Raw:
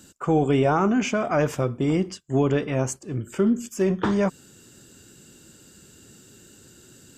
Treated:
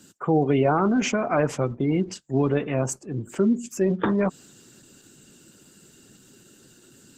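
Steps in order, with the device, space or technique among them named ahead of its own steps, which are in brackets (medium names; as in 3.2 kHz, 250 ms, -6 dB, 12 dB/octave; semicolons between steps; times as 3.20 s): 1.64–2.52 s: dynamic bell 590 Hz, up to -4 dB, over -34 dBFS, Q 2.1; noise-suppressed video call (high-pass 110 Hz 24 dB/octave; spectral gate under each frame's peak -30 dB strong; Opus 16 kbps 48 kHz)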